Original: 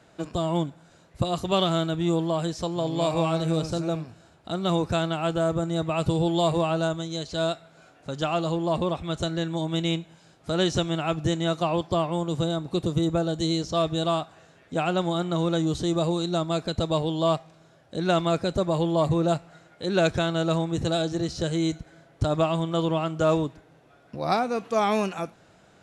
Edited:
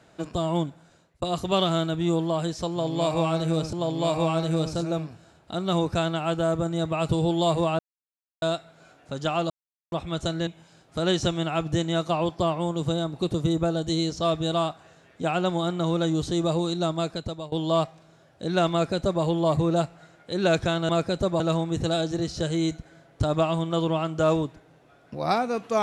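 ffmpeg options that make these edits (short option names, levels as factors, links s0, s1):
-filter_complex "[0:a]asplit=11[s0][s1][s2][s3][s4][s5][s6][s7][s8][s9][s10];[s0]atrim=end=1.22,asetpts=PTS-STARTPTS,afade=t=out:st=0.68:d=0.54:c=qsin[s11];[s1]atrim=start=1.22:end=3.732,asetpts=PTS-STARTPTS,afade=t=in:d=0.004:c=hsin[s12];[s2]atrim=start=2.698:end=6.76,asetpts=PTS-STARTPTS,afade=t=out:st=4.058:d=0.004:c=hsin[s13];[s3]atrim=start=6.76:end=7.39,asetpts=PTS-STARTPTS,volume=0[s14];[s4]atrim=start=7.39:end=8.47,asetpts=PTS-STARTPTS,afade=t=in:d=0.004:c=hsin,afade=t=out:st=1.076:d=0.004:c=hsin[s15];[s5]atrim=start=8.47:end=8.89,asetpts=PTS-STARTPTS,volume=0[s16];[s6]atrim=start=8.89:end=9.442,asetpts=PTS-STARTPTS,afade=t=in:d=0.004:c=hsin[s17];[s7]atrim=start=9.988:end=17.04,asetpts=PTS-STARTPTS,afade=t=out:st=6.502:d=0.55:silence=0.112202[s18];[s8]atrim=start=17.04:end=20.412,asetpts=PTS-STARTPTS,afade=t=in:d=0.004:c=hsin:silence=0.112202[s19];[s9]atrim=start=18.238:end=18.752[s20];[s10]atrim=start=20.408[s21];[s11][s12]concat=n=2:v=0:a=1[s22];[s13][s14][s15][s16][s17]concat=n=5:v=0:a=1[s23];[s22][s23]acrossfade=d=0.004:c1=hsin:c2=hsin[s24];[s18][s19]concat=n=2:v=0:a=1[s25];[s24][s25]acrossfade=d=0.004:c1=hsin:c2=hsin[s26];[s26][s20]acrossfade=d=0.004:c1=hsin:c2=hsin[s27];[s27][s21]acrossfade=d=0.004:c1=hsin:c2=hsin"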